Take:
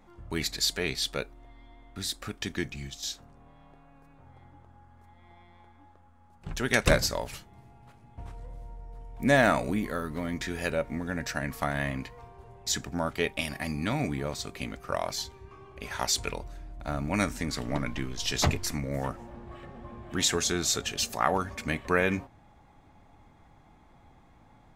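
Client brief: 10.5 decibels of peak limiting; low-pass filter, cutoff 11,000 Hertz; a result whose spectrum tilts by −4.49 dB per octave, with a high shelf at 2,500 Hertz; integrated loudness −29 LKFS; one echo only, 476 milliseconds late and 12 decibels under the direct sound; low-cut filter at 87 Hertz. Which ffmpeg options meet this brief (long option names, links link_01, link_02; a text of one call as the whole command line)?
ffmpeg -i in.wav -af "highpass=87,lowpass=11000,highshelf=frequency=2500:gain=-8,alimiter=limit=-18.5dB:level=0:latency=1,aecho=1:1:476:0.251,volume=5.5dB" out.wav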